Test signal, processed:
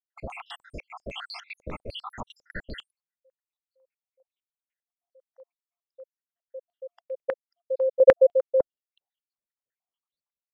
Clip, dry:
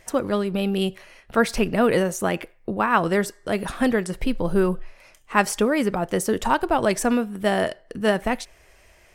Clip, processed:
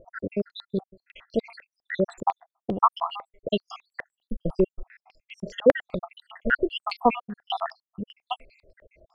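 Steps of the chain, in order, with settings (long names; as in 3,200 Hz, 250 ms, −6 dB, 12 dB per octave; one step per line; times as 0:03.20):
time-frequency cells dropped at random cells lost 84%
low-pass on a step sequencer 10 Hz 540–4,300 Hz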